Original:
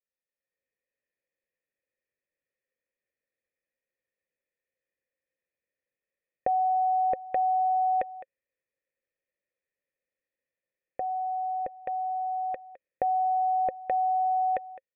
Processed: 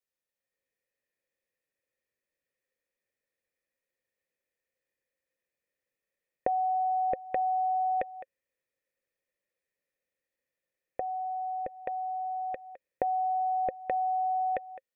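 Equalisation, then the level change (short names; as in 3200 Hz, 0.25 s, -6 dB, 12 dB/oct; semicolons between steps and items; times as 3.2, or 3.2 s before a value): dynamic EQ 900 Hz, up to -6 dB, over -39 dBFS, Q 1.3; +1.5 dB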